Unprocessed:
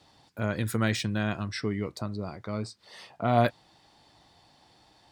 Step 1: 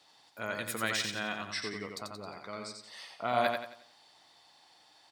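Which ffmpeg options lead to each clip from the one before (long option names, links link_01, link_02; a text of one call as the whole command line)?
ffmpeg -i in.wav -filter_complex "[0:a]highpass=frequency=1100:poles=1,asplit=2[link_01][link_02];[link_02]aecho=0:1:89|178|267|356|445:0.596|0.22|0.0815|0.0302|0.0112[link_03];[link_01][link_03]amix=inputs=2:normalize=0" out.wav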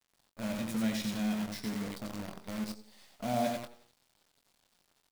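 ffmpeg -i in.wav -filter_complex "[0:a]firequalizer=gain_entry='entry(110,0);entry(220,8);entry(370,-13);entry(590,-5);entry(1300,-21);entry(2100,-13);entry(3700,-12);entry(6700,-12);entry(10000,-18)':delay=0.05:min_phase=1,acrusher=bits=8:dc=4:mix=0:aa=0.000001,asplit=2[link_01][link_02];[link_02]adelay=23,volume=-8.5dB[link_03];[link_01][link_03]amix=inputs=2:normalize=0,volume=3.5dB" out.wav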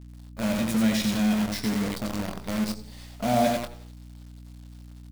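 ffmpeg -i in.wav -filter_complex "[0:a]aeval=exprs='val(0)+0.00224*(sin(2*PI*60*n/s)+sin(2*PI*2*60*n/s)/2+sin(2*PI*3*60*n/s)/3+sin(2*PI*4*60*n/s)/4+sin(2*PI*5*60*n/s)/5)':channel_layout=same,asplit=2[link_01][link_02];[link_02]asoftclip=type=hard:threshold=-34dB,volume=-9dB[link_03];[link_01][link_03]amix=inputs=2:normalize=0,volume=7.5dB" out.wav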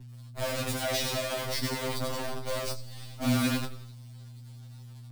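ffmpeg -i in.wav -filter_complex "[0:a]acrossover=split=260|1400[link_01][link_02][link_03];[link_01]alimiter=level_in=3.5dB:limit=-24dB:level=0:latency=1,volume=-3.5dB[link_04];[link_04][link_02][link_03]amix=inputs=3:normalize=0,afftfilt=real='re*2.45*eq(mod(b,6),0)':imag='im*2.45*eq(mod(b,6),0)':win_size=2048:overlap=0.75,volume=3dB" out.wav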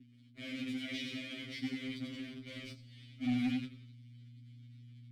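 ffmpeg -i in.wav -filter_complex "[0:a]asplit=3[link_01][link_02][link_03];[link_01]bandpass=frequency=270:width_type=q:width=8,volume=0dB[link_04];[link_02]bandpass=frequency=2290:width_type=q:width=8,volume=-6dB[link_05];[link_03]bandpass=frequency=3010:width_type=q:width=8,volume=-9dB[link_06];[link_04][link_05][link_06]amix=inputs=3:normalize=0,asoftclip=type=tanh:threshold=-28.5dB,asubboost=boost=10:cutoff=100,volume=4.5dB" out.wav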